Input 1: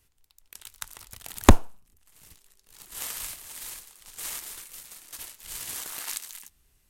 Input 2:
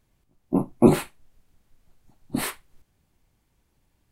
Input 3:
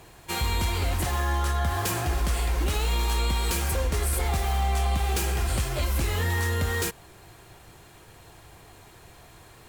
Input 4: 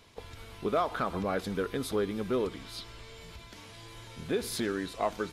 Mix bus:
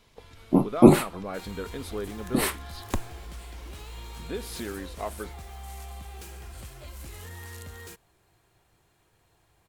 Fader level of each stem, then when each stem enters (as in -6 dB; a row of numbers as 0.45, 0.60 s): -15.5, +2.0, -16.5, -4.0 dB; 1.45, 0.00, 1.05, 0.00 s